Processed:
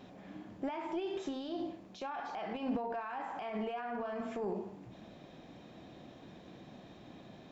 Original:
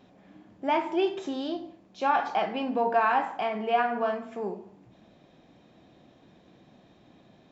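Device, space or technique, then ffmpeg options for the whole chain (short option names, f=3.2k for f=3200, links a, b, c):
de-esser from a sidechain: -filter_complex "[0:a]asplit=2[a][b];[b]highpass=f=4.3k:p=1,apad=whole_len=331406[c];[a][c]sidechaincompress=threshold=-55dB:ratio=6:attack=0.53:release=38,volume=4dB"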